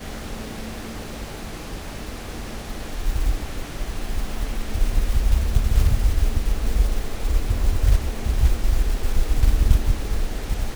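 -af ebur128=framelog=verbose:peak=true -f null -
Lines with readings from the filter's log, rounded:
Integrated loudness:
  I:         -26.0 LUFS
  Threshold: -36.0 LUFS
Loudness range:
  LRA:         8.3 LU
  Threshold: -45.7 LUFS
  LRA low:   -31.9 LUFS
  LRA high:  -23.7 LUFS
True peak:
  Peak:       -1.9 dBFS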